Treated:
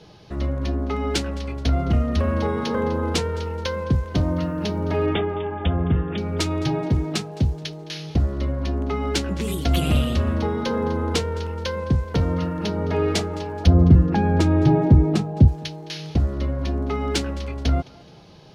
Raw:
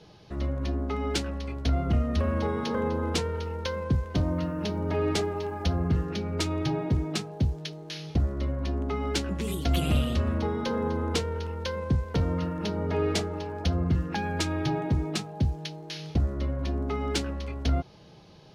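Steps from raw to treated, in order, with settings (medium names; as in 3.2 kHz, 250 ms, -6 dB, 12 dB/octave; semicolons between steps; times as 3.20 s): 5.06–6.18 s: brick-wall FIR low-pass 3.7 kHz; 13.67–15.48 s: tilt shelf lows +8 dB, about 1.1 kHz; thinning echo 213 ms, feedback 35%, level -21 dB; trim +5 dB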